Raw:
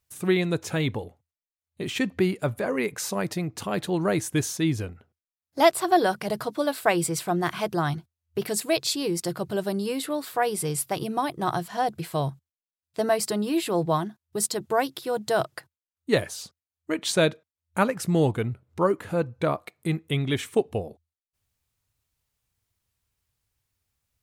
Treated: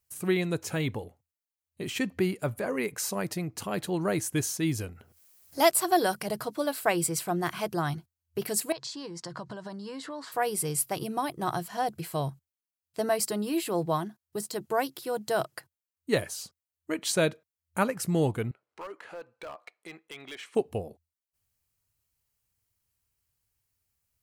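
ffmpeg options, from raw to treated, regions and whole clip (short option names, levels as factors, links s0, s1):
-filter_complex "[0:a]asettb=1/sr,asplit=3[s0][s1][s2];[s0]atrim=end=4.634[s3];[s1]atrim=start=4.63:end=6.23,asetpts=PTS-STARTPTS,afade=t=in:d=0.004:c=qsin,afade=t=out:st=1.596:d=0.004:c=qsin,highshelf=f=4600:g=6.5,acompressor=mode=upward:threshold=0.0141:ratio=2.5:attack=3.2:release=140:knee=2.83:detection=peak[s4];[s2]atrim=start=6.226[s5];[s3][s4]acrossfade=d=0.004:c1=hsin:c2=qsin[s6];[s6][s5]acrossfade=d=0.004:c1=qsin:c2=hsin,asettb=1/sr,asplit=3[s7][s8][s9];[s7]atrim=end=8.724[s10];[s8]atrim=start=8.72:end=10.32,asetpts=PTS-STARTPTS,afade=t=in:d=0.004:c=qsin,afade=t=out:st=1.596:d=0.004:c=qsin,acompressor=threshold=0.0316:ratio=12:attack=3.2:release=140:knee=1:detection=peak,highpass=130,equalizer=f=130:t=q:w=4:g=5,equalizer=f=390:t=q:w=4:g=-6,equalizer=f=1000:t=q:w=4:g=10,equalizer=f=1700:t=q:w=4:g=5,equalizer=f=2500:t=q:w=4:g=-6,lowpass=f=6700:w=0.5412,lowpass=f=6700:w=1.3066[s11];[s9]atrim=start=10.316[s12];[s10][s11]acrossfade=d=0.004:c1=hsin:c2=qsin[s13];[s13][s12]acrossfade=d=0.004:c1=qsin:c2=hsin,asettb=1/sr,asplit=3[s14][s15][s16];[s14]atrim=end=13.254[s17];[s15]atrim=start=13.25:end=15.57,asetpts=PTS-STARTPTS,afade=t=in:d=0.004:c=qsin,afade=t=out:st=2.316:d=0.004:c=qsin,highpass=110,deesser=0.6[s18];[s16]atrim=start=15.566[s19];[s17][s18]acrossfade=d=0.004:c1=hsin:c2=qsin[s20];[s20][s19]acrossfade=d=0.004:c1=qsin:c2=hsin,asettb=1/sr,asplit=3[s21][s22][s23];[s21]atrim=end=18.514[s24];[s22]atrim=start=18.51:end=20.55,asetpts=PTS-STARTPTS,afade=t=in:d=0.004:c=qsin,afade=t=out:st=2.036:d=0.004:c=qsin,highpass=610,lowpass=4400,acompressor=threshold=0.0158:ratio=2:attack=3.2:release=140:knee=1:detection=peak,volume=37.6,asoftclip=hard,volume=0.0266[s25];[s23]atrim=start=20.546[s26];[s24][s25]acrossfade=d=0.004:c1=hsin:c2=qsin[s27];[s27][s26]acrossfade=d=0.004:c1=qsin:c2=hsin,highshelf=f=7800:g=7.5,bandreject=f=3600:w=13,volume=0.631"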